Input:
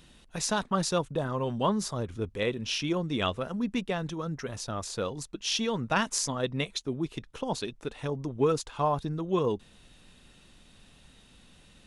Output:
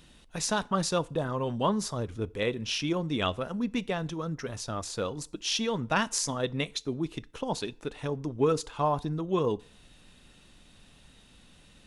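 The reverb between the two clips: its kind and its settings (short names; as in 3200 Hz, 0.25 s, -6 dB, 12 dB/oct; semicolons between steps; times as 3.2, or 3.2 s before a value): FDN reverb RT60 0.47 s, low-frequency decay 0.8×, high-frequency decay 0.85×, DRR 18.5 dB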